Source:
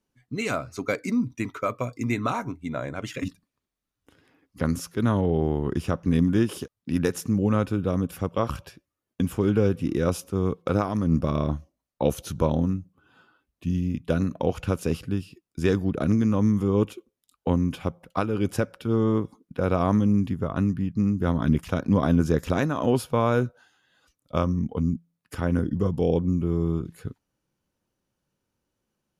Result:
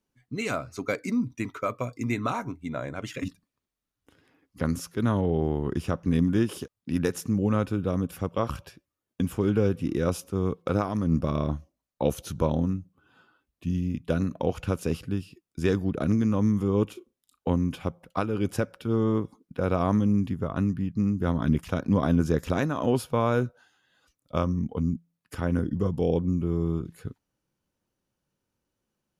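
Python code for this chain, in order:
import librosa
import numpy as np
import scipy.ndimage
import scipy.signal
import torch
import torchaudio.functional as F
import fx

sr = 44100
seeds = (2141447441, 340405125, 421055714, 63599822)

y = fx.doubler(x, sr, ms=36.0, db=-11.0, at=(16.87, 17.5))
y = F.gain(torch.from_numpy(y), -2.0).numpy()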